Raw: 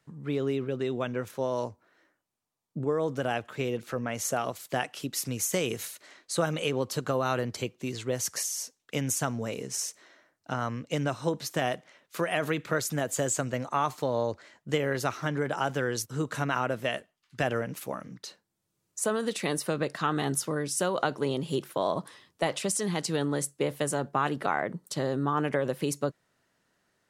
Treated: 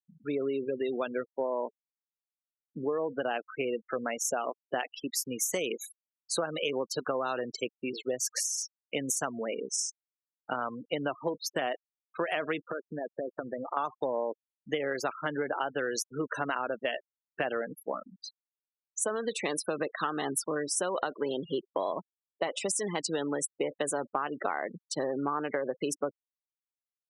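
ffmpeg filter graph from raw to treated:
ffmpeg -i in.wav -filter_complex "[0:a]asettb=1/sr,asplit=3[link_01][link_02][link_03];[link_01]atrim=end=12.644[link_04];[link_02]atrim=start=12.64:end=13.77,asetpts=PTS-STARTPTS,afade=type=in:duration=0.004:curve=qsin,afade=type=out:start_time=1.126:duration=0.004:curve=qsin,lowpass=2200,aemphasis=mode=reproduction:type=75fm,acompressor=threshold=-30dB:ratio=12:attack=3.2:release=140:knee=1:detection=peak[link_05];[link_03]atrim=start=13.766[link_06];[link_04][link_05]acrossfade=duration=0.004:curve1=hsin:curve2=qsin[link_07];[link_07][link_06]acrossfade=duration=0.004:curve1=qsin:curve2=hsin,highpass=300,afftfilt=real='re*gte(hypot(re,im),0.0224)':imag='im*gte(hypot(re,im),0.0224)':win_size=1024:overlap=0.75,acompressor=threshold=-30dB:ratio=6,volume=3dB" out.wav

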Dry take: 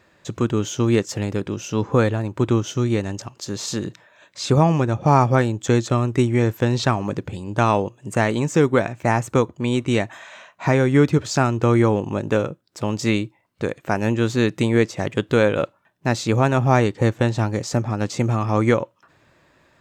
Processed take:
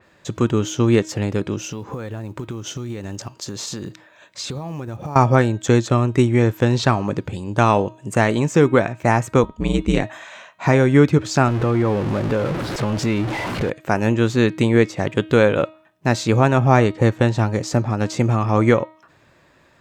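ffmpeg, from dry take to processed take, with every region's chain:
ffmpeg -i in.wav -filter_complex "[0:a]asettb=1/sr,asplit=3[link_01][link_02][link_03];[link_01]atrim=end=1.584[link_04];[link_02]atrim=start=1.58:end=5.16,asetpts=PTS-STARTPTS,afade=type=in:duration=0.004:curve=qsin,afade=type=out:start_time=3.576:duration=0.004:curve=qsin,acompressor=threshold=-27dB:ratio=16:attack=3.2:release=140:knee=1:detection=peak,acrusher=bits=9:mode=log:mix=0:aa=0.000001[link_05];[link_03]atrim=start=5.156[link_06];[link_04][link_05]acrossfade=duration=0.004:curve1=hsin:curve2=qsin[link_07];[link_07][link_06]acrossfade=duration=0.004:curve1=qsin:curve2=hsin,asettb=1/sr,asplit=3[link_08][link_09][link_10];[link_08]atrim=end=9.434[link_11];[link_09]atrim=start=9.43:end=10.03,asetpts=PTS-STARTPTS,afade=type=in:duration=0.004:curve=qsin,afade=type=out:start_time=0.596:duration=0.004:curve=qsin,equalizer=frequency=150:width_type=o:width=0.73:gain=8,aeval=exprs='val(0)*sin(2*PI*72*n/s)':channel_layout=same[link_12];[link_10]atrim=start=10.026[link_13];[link_11][link_12]acrossfade=duration=0.004:curve1=hsin:curve2=qsin[link_14];[link_14][link_13]acrossfade=duration=0.004:curve1=qsin:curve2=hsin,asettb=1/sr,asplit=3[link_15][link_16][link_17];[link_15]atrim=end=11.484[link_18];[link_16]atrim=start=11.48:end=13.7,asetpts=PTS-STARTPTS,afade=type=in:duration=0.004:curve=qsin,afade=type=out:start_time=2.216:duration=0.004:curve=qsin,aeval=exprs='val(0)+0.5*0.0944*sgn(val(0))':channel_layout=same,aemphasis=mode=reproduction:type=50fm,acompressor=threshold=-22dB:ratio=2:attack=3.2:release=140:knee=1:detection=peak[link_19];[link_17]atrim=start=13.696[link_20];[link_18][link_19]acrossfade=duration=0.004:curve1=hsin:curve2=qsin[link_21];[link_21][link_20]acrossfade=duration=0.004:curve1=qsin:curve2=hsin,bandreject=frequency=315.2:width_type=h:width=4,bandreject=frequency=630.4:width_type=h:width=4,bandreject=frequency=945.6:width_type=h:width=4,bandreject=frequency=1260.8:width_type=h:width=4,bandreject=frequency=1576:width_type=h:width=4,bandreject=frequency=1891.2:width_type=h:width=4,bandreject=frequency=2206.4:width_type=h:width=4,bandreject=frequency=2521.6:width_type=h:width=4,bandreject=frequency=2836.8:width_type=h:width=4,bandreject=frequency=3152:width_type=h:width=4,bandreject=frequency=3467.2:width_type=h:width=4,bandreject=frequency=3782.4:width_type=h:width=4,bandreject=frequency=4097.6:width_type=h:width=4,bandreject=frequency=4412.8:width_type=h:width=4,bandreject=frequency=4728:width_type=h:width=4,adynamicequalizer=threshold=0.0126:dfrequency=3800:dqfactor=0.7:tfrequency=3800:tqfactor=0.7:attack=5:release=100:ratio=0.375:range=2.5:mode=cutabove:tftype=highshelf,volume=2.5dB" out.wav

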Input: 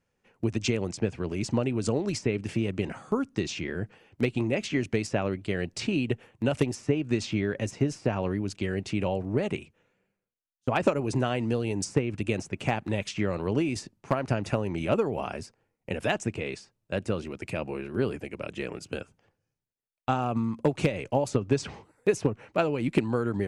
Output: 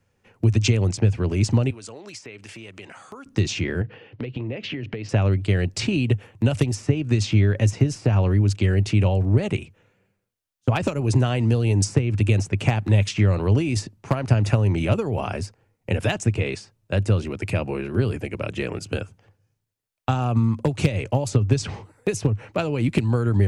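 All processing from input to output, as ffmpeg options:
ffmpeg -i in.wav -filter_complex "[0:a]asettb=1/sr,asplit=3[link_01][link_02][link_03];[link_01]atrim=end=1.704[link_04];[link_02]atrim=start=1.7:end=3.26,asetpts=PTS-STARTPTS,afade=type=in:duration=0.004:curve=qsin,afade=type=out:start_time=1.556:duration=0.004:curve=qsin,highpass=frequency=1300:poles=1,acompressor=threshold=-47dB:ratio=2.5:attack=3.2:release=140:knee=1:detection=peak[link_05];[link_03]atrim=start=3.256[link_06];[link_04][link_05]acrossfade=duration=0.004:curve1=hsin:curve2=qsin[link_07];[link_07][link_06]acrossfade=duration=0.004:curve1=qsin:curve2=hsin,asettb=1/sr,asplit=3[link_08][link_09][link_10];[link_08]atrim=end=3.814[link_11];[link_09]atrim=start=3.81:end=5.09,asetpts=PTS-STARTPTS,afade=type=in:duration=0.004:curve=qsin,afade=type=out:start_time=1.276:duration=0.004:curve=qsin,highpass=110,equalizer=frequency=130:width_type=q:width=4:gain=7,equalizer=frequency=290:width_type=q:width=4:gain=4,equalizer=frequency=480:width_type=q:width=4:gain=8,equalizer=frequency=1800:width_type=q:width=4:gain=4,equalizer=frequency=2900:width_type=q:width=4:gain=5,lowpass=frequency=4400:width=0.5412,lowpass=frequency=4400:width=1.3066,acompressor=threshold=-34dB:ratio=12:attack=3.2:release=140:knee=1:detection=peak[link_12];[link_10]atrim=start=5.086[link_13];[link_11][link_12]acrossfade=duration=0.004:curve1=hsin:curve2=qsin[link_14];[link_14][link_13]acrossfade=duration=0.004:curve1=qsin:curve2=hsin,equalizer=frequency=100:width_type=o:width=0.51:gain=11.5,acrossover=split=170|3000[link_15][link_16][link_17];[link_16]acompressor=threshold=-29dB:ratio=6[link_18];[link_15][link_18][link_17]amix=inputs=3:normalize=0,volume=7dB" out.wav

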